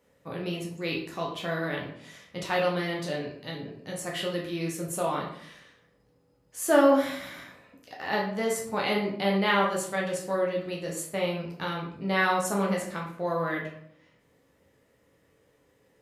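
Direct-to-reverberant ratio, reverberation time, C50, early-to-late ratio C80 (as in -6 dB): -2.5 dB, 0.65 s, 5.5 dB, 9.5 dB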